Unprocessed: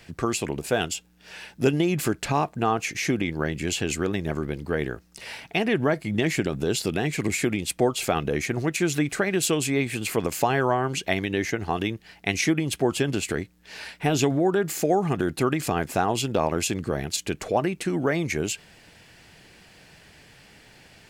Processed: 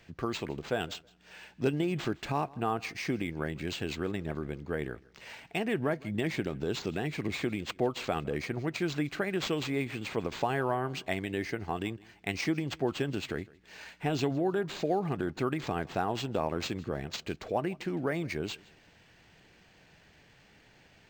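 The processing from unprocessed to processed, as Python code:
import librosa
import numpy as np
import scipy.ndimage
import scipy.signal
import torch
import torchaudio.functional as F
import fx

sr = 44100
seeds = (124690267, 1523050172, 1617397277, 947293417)

y = fx.echo_feedback(x, sr, ms=160, feedback_pct=26, wet_db=-23)
y = np.interp(np.arange(len(y)), np.arange(len(y))[::4], y[::4])
y = F.gain(torch.from_numpy(y), -7.5).numpy()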